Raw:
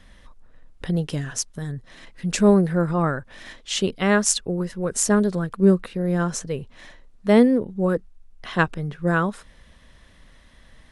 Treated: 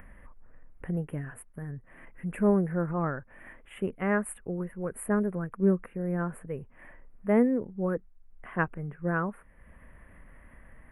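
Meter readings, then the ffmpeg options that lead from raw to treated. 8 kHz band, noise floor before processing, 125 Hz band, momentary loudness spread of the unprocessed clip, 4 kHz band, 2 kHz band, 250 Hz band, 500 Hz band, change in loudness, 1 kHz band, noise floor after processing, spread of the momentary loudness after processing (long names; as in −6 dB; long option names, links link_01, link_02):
−21.0 dB, −52 dBFS, −8.0 dB, 15 LU, below −25 dB, −8.5 dB, −8.0 dB, −8.0 dB, −8.5 dB, −8.0 dB, −56 dBFS, 16 LU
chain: -af "acompressor=mode=upward:threshold=-33dB:ratio=2.5,asuperstop=centerf=5100:order=8:qfactor=0.64,volume=-8dB"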